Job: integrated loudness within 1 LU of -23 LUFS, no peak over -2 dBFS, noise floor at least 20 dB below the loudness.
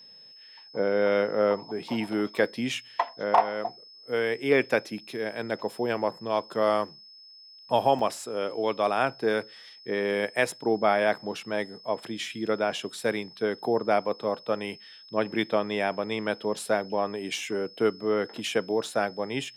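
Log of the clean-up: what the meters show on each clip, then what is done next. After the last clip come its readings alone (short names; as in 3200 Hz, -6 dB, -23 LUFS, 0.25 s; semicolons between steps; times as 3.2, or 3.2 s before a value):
dropouts 1; longest dropout 3.4 ms; steady tone 5200 Hz; tone level -48 dBFS; loudness -28.0 LUFS; peak -8.5 dBFS; loudness target -23.0 LUFS
-> interpolate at 7.99, 3.4 ms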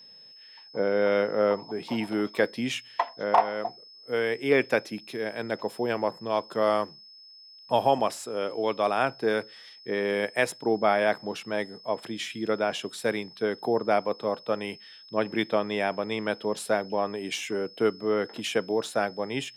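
dropouts 0; steady tone 5200 Hz; tone level -48 dBFS
-> notch 5200 Hz, Q 30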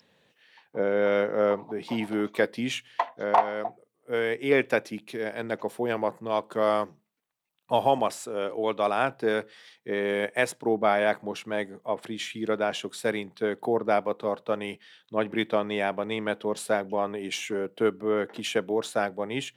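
steady tone none; loudness -28.0 LUFS; peak -9.0 dBFS; loudness target -23.0 LUFS
-> gain +5 dB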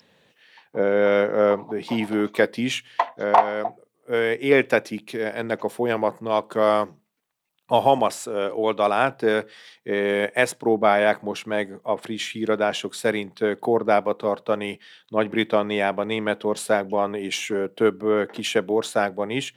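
loudness -23.0 LUFS; peak -4.0 dBFS; noise floor -66 dBFS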